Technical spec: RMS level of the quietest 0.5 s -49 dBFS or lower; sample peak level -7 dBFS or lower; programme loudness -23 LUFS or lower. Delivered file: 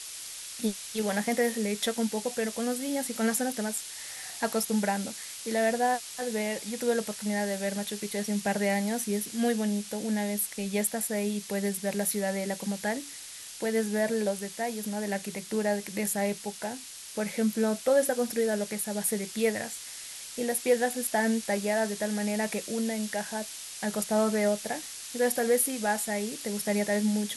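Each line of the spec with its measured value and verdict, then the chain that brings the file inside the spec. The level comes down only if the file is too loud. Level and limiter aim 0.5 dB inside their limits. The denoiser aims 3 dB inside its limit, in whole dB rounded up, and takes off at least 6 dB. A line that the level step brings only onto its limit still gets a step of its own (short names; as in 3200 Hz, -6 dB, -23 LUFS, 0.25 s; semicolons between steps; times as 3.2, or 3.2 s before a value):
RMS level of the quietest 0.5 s -43 dBFS: fail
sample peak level -13.0 dBFS: OK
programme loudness -29.5 LUFS: OK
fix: denoiser 9 dB, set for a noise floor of -43 dBFS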